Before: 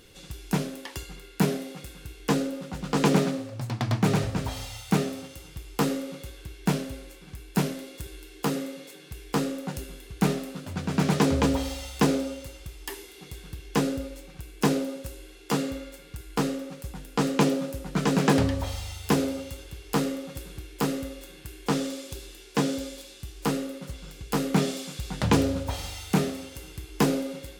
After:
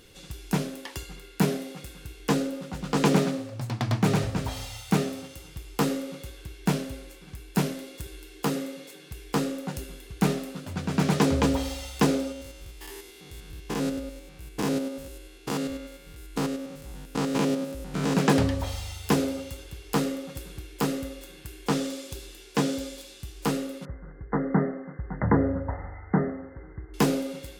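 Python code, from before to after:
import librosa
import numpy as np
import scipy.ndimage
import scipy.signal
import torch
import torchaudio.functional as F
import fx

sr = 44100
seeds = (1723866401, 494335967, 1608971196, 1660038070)

y = fx.spec_steps(x, sr, hold_ms=100, at=(12.32, 18.15))
y = fx.brickwall_lowpass(y, sr, high_hz=2100.0, at=(23.85, 26.94))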